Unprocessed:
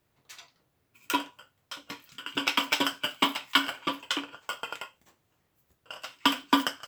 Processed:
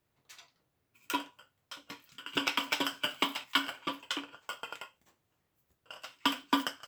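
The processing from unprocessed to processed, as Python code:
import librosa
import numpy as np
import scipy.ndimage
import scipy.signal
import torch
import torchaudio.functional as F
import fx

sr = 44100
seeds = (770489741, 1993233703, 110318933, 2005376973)

y = fx.band_squash(x, sr, depth_pct=100, at=(2.33, 3.44))
y = y * 10.0 ** (-5.5 / 20.0)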